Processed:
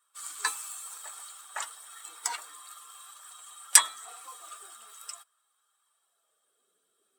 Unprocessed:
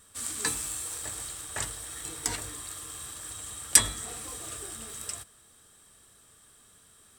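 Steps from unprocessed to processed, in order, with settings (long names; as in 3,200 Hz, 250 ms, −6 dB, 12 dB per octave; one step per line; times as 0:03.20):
spectral dynamics exaggerated over time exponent 1.5
high-pass filter sweep 1,000 Hz → 390 Hz, 0:05.87–0:06.72
level +1.5 dB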